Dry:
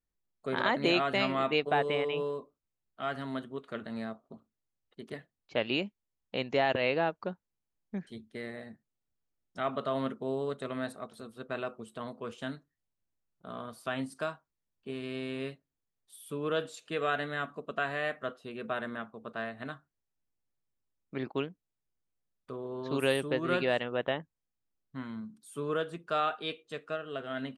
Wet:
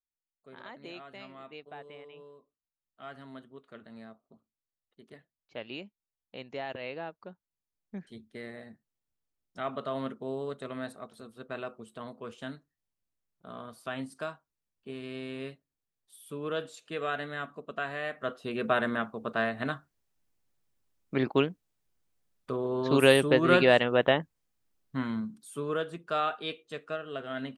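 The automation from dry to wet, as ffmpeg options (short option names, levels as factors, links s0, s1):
-af "volume=2.51,afade=t=in:st=2.39:d=0.62:silence=0.398107,afade=t=in:st=7.28:d=0.93:silence=0.398107,afade=t=in:st=18.12:d=0.41:silence=0.316228,afade=t=out:st=25.12:d=0.53:silence=0.421697"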